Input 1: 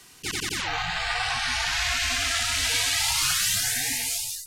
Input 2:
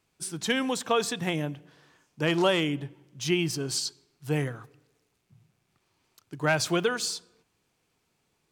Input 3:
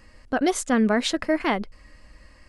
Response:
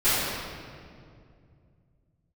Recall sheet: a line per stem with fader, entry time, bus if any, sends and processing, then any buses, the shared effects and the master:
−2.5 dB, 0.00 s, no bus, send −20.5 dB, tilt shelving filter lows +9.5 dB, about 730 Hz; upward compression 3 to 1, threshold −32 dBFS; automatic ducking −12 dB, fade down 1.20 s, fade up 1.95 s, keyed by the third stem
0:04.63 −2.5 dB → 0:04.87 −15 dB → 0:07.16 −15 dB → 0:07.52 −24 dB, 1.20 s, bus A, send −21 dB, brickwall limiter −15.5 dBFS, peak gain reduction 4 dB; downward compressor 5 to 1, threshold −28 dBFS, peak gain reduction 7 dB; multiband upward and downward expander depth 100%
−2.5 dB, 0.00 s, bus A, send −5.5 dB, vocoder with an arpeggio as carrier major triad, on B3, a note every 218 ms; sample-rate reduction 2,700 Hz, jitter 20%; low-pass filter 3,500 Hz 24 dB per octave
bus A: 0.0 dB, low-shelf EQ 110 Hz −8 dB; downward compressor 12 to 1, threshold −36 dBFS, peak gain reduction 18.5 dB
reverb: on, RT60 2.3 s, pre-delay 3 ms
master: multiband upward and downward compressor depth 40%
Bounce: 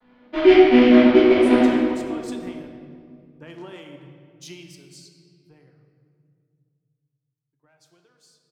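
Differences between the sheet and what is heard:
stem 1: muted
stem 2 −2.5 dB → −10.5 dB
master: missing multiband upward and downward compressor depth 40%

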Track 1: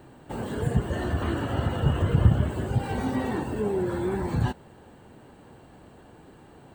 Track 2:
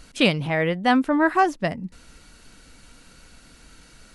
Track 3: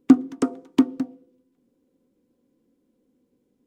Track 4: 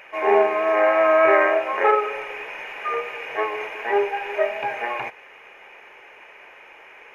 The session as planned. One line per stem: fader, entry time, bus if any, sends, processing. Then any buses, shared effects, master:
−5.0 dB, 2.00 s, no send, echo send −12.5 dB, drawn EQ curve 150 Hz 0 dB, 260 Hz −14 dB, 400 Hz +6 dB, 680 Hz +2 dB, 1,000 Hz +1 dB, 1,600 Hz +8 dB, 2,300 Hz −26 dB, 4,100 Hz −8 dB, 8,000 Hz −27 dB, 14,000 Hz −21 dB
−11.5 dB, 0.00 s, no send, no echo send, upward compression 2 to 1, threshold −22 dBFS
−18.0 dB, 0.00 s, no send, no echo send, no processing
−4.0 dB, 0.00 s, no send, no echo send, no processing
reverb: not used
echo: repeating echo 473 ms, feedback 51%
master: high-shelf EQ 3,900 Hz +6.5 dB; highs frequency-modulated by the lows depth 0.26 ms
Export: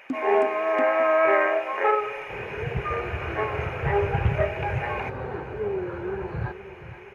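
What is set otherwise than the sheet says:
stem 2: muted
master: missing high-shelf EQ 3,900 Hz +6.5 dB

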